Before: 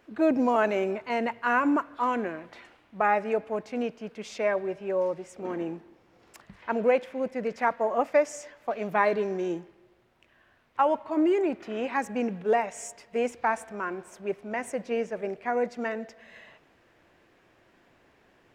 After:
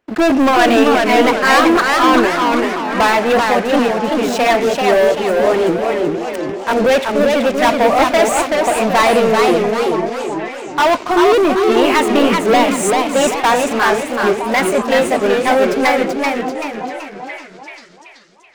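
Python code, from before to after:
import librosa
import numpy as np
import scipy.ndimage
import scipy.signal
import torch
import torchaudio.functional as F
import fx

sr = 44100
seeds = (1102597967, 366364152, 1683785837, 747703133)

y = fx.pitch_ramps(x, sr, semitones=3.0, every_ms=948)
y = fx.dynamic_eq(y, sr, hz=2800.0, q=0.78, threshold_db=-44.0, ratio=4.0, max_db=4)
y = fx.leveller(y, sr, passes=5)
y = fx.echo_stepped(y, sr, ms=481, hz=300.0, octaves=1.4, feedback_pct=70, wet_db=-6)
y = fx.echo_warbled(y, sr, ms=384, feedback_pct=44, rate_hz=2.8, cents=166, wet_db=-3.5)
y = y * 10.0 ** (1.0 / 20.0)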